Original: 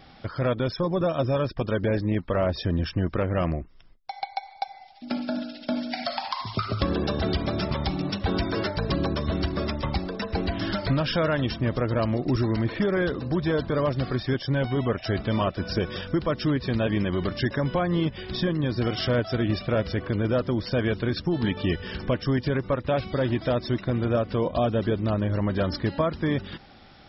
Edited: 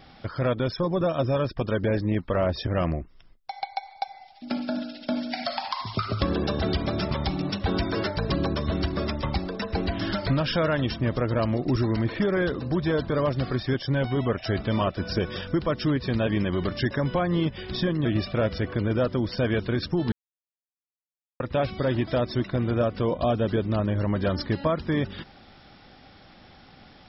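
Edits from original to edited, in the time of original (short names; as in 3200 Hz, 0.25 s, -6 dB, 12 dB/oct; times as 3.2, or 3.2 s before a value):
2.67–3.27 cut
18.65–19.39 cut
21.46–22.74 mute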